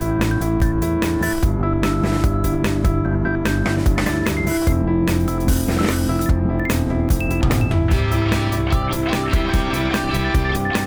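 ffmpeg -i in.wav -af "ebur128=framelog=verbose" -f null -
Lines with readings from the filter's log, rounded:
Integrated loudness:
  I:         -19.3 LUFS
  Threshold: -29.3 LUFS
Loudness range:
  LRA:         0.5 LU
  Threshold: -39.2 LUFS
  LRA low:   -19.4 LUFS
  LRA high:  -19.0 LUFS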